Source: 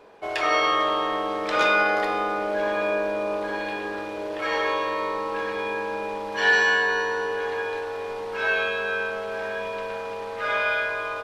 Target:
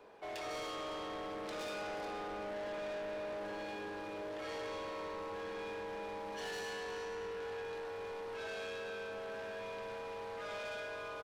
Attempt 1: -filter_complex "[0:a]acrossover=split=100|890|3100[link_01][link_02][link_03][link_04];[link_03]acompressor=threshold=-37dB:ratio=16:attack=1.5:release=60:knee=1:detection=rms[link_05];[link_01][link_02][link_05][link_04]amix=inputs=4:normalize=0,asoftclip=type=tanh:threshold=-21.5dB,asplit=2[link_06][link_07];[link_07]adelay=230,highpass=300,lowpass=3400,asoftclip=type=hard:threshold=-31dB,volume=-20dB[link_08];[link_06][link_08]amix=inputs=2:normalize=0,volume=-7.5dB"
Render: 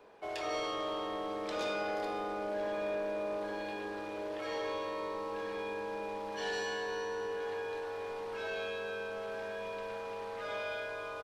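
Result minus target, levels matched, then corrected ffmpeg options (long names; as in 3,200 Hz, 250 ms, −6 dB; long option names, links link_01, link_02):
soft clipping: distortion −10 dB
-filter_complex "[0:a]acrossover=split=100|890|3100[link_01][link_02][link_03][link_04];[link_03]acompressor=threshold=-37dB:ratio=16:attack=1.5:release=60:knee=1:detection=rms[link_05];[link_01][link_02][link_05][link_04]amix=inputs=4:normalize=0,asoftclip=type=tanh:threshold=-32dB,asplit=2[link_06][link_07];[link_07]adelay=230,highpass=300,lowpass=3400,asoftclip=type=hard:threshold=-31dB,volume=-20dB[link_08];[link_06][link_08]amix=inputs=2:normalize=0,volume=-7.5dB"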